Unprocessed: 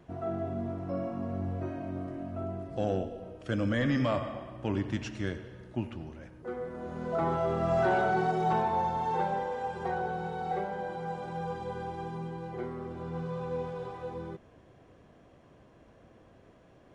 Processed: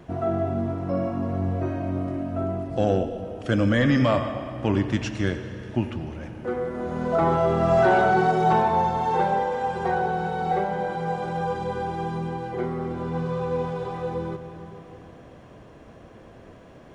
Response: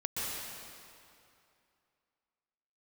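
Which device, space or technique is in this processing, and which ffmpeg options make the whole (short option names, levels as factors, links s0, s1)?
compressed reverb return: -filter_complex "[0:a]asplit=2[s0][s1];[1:a]atrim=start_sample=2205[s2];[s1][s2]afir=irnorm=-1:irlink=0,acompressor=threshold=0.02:ratio=6,volume=0.376[s3];[s0][s3]amix=inputs=2:normalize=0,volume=2.37"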